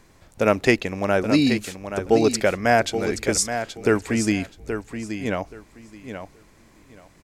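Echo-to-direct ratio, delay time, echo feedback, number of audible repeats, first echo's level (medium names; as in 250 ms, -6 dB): -9.0 dB, 826 ms, 19%, 2, -9.0 dB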